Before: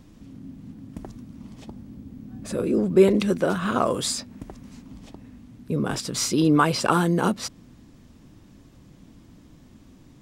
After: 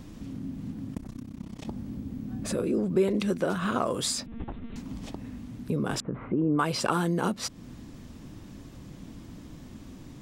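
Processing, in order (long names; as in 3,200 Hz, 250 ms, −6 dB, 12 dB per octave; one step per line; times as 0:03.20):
0:00.94–0:01.65: amplitude modulation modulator 32 Hz, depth 90%
0:04.26–0:04.76: one-pitch LPC vocoder at 8 kHz 230 Hz
0:06.00–0:06.59: Gaussian smoothing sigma 6 samples
downward compressor 2 to 1, threshold −38 dBFS, peak gain reduction 15 dB
level +5.5 dB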